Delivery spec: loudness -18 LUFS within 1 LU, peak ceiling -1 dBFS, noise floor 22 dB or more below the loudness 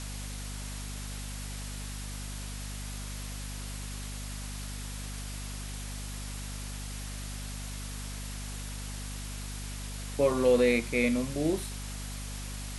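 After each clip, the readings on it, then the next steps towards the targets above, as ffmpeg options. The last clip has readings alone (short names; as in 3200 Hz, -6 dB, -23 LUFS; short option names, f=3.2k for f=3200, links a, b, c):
hum 50 Hz; harmonics up to 250 Hz; hum level -37 dBFS; noise floor -39 dBFS; noise floor target -56 dBFS; loudness -34.0 LUFS; peak -12.5 dBFS; loudness target -18.0 LUFS
-> -af "bandreject=f=50:t=h:w=6,bandreject=f=100:t=h:w=6,bandreject=f=150:t=h:w=6,bandreject=f=200:t=h:w=6,bandreject=f=250:t=h:w=6"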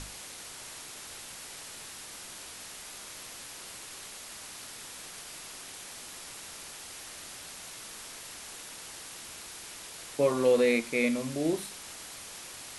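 hum none; noise floor -45 dBFS; noise floor target -57 dBFS
-> -af "afftdn=nr=12:nf=-45"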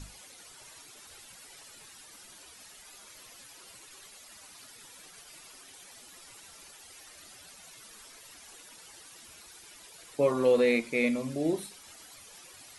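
noise floor -52 dBFS; loudness -28.0 LUFS; peak -14.0 dBFS; loudness target -18.0 LUFS
-> -af "volume=10dB"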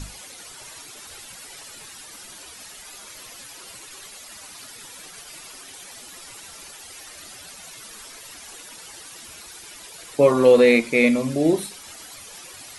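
loudness -18.0 LUFS; peak -4.0 dBFS; noise floor -42 dBFS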